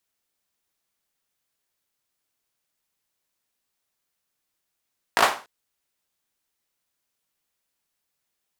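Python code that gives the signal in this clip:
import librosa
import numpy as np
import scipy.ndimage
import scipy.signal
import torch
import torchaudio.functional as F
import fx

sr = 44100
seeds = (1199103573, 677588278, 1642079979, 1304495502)

y = fx.drum_clap(sr, seeds[0], length_s=0.29, bursts=4, spacing_ms=18, hz=890.0, decay_s=0.35)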